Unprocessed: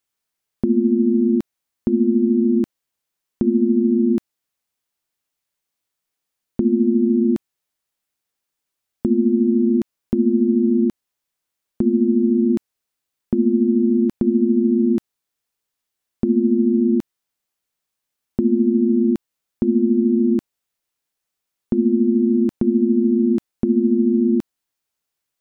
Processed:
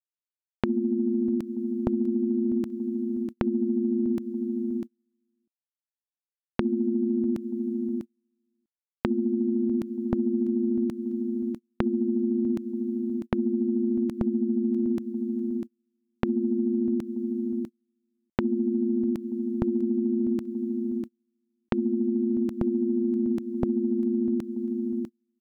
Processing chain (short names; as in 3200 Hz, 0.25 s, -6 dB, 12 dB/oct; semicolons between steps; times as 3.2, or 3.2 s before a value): on a send: feedback echo 0.648 s, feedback 15%, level -14 dB; on the sum: dynamic EQ 270 Hz, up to -5 dB, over -29 dBFS, Q 1.7; gate -34 dBFS, range -32 dB; compressor, threshold -25 dBFS, peak gain reduction 9.5 dB; gain +2.5 dB